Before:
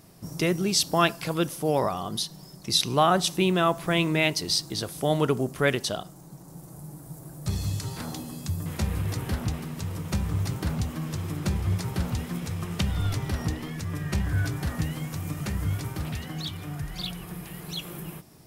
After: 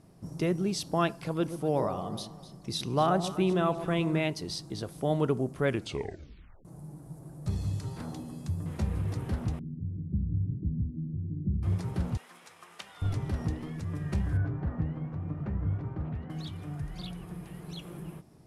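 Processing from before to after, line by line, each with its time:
1.2–4.21 echo with dull and thin repeats by turns 0.126 s, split 900 Hz, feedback 57%, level -9.5 dB
5.66 tape stop 0.99 s
9.59–11.63 inverse Chebyshev low-pass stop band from 1300 Hz, stop band 70 dB
12.17–13.02 HPF 990 Hz
14.37–16.3 LPF 1500 Hz
whole clip: Chebyshev low-pass 11000 Hz, order 3; tilt shelf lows +5 dB, about 1300 Hz; gain -7.5 dB

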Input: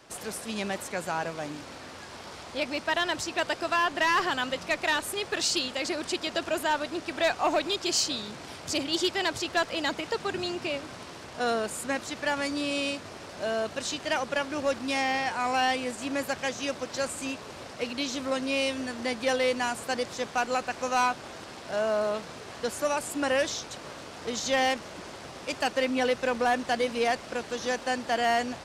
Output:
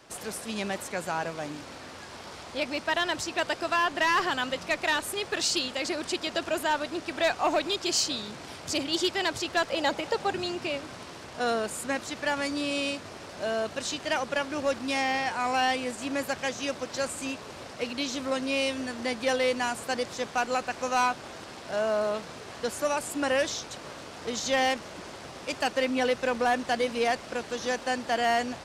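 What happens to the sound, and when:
9.7–10.33 small resonant body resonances 560/800 Hz, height 10 dB

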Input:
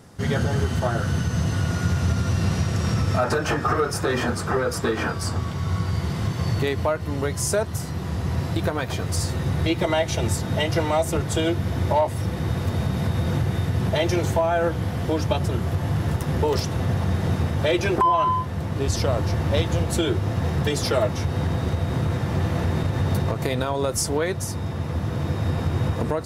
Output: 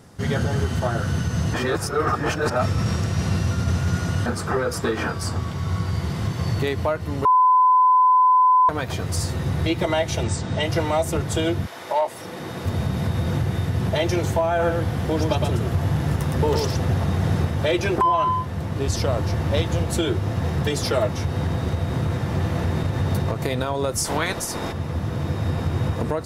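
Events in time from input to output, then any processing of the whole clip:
1.54–4.26 reverse
7.25–8.69 bleep 1010 Hz -12 dBFS
10.23–10.63 elliptic low-pass 8600 Hz
11.65–12.63 HPF 790 Hz -> 200 Hz
14.48–17.45 echo 0.113 s -4 dB
24.04–24.71 spectral limiter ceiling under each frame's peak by 19 dB

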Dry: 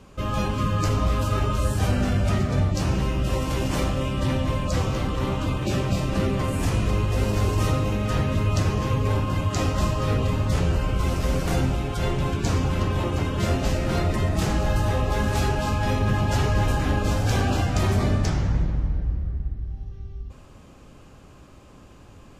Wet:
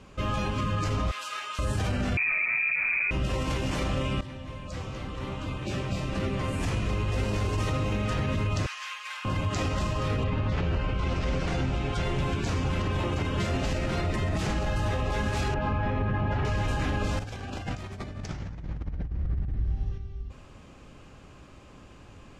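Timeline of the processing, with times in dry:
1.11–1.59 HPF 1500 Hz
2.17–3.11 inverted band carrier 2500 Hz
4.21–7.71 fade in, from -16.5 dB
8.66–9.25 HPF 1300 Hz 24 dB/oct
10.23–12.02 LPF 3000 Hz -> 8100 Hz
15.54–16.45 LPF 1900 Hz
17.19–19.98 negative-ratio compressor -28 dBFS, ratio -0.5
whole clip: LPF 9100 Hz 12 dB/oct; bell 2300 Hz +4 dB 1.3 oct; limiter -17.5 dBFS; gain -2 dB

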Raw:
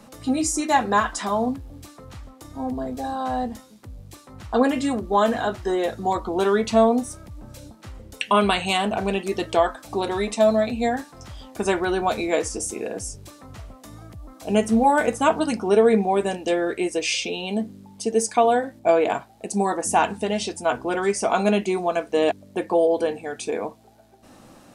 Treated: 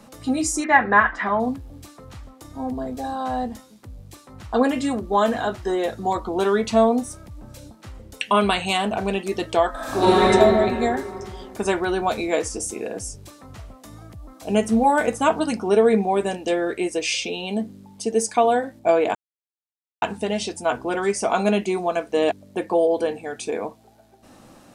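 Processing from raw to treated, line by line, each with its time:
0.64–1.4 synth low-pass 1900 Hz, resonance Q 3.9
9.7–10.23 reverb throw, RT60 2.6 s, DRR -11.5 dB
19.15–20.02 mute

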